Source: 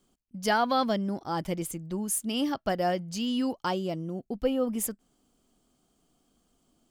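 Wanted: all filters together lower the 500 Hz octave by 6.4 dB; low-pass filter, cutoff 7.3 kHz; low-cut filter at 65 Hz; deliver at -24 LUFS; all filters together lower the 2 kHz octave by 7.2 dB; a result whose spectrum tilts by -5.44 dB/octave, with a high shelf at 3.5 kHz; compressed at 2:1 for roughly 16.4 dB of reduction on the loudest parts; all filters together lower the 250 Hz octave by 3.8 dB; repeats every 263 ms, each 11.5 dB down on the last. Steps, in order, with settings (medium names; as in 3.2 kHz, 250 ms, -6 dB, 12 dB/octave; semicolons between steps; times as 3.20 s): high-pass 65 Hz; low-pass 7.3 kHz; peaking EQ 250 Hz -3 dB; peaking EQ 500 Hz -6.5 dB; peaking EQ 2 kHz -7.5 dB; treble shelf 3.5 kHz -9 dB; compression 2:1, threshold -57 dBFS; feedback delay 263 ms, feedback 27%, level -11.5 dB; trim +24.5 dB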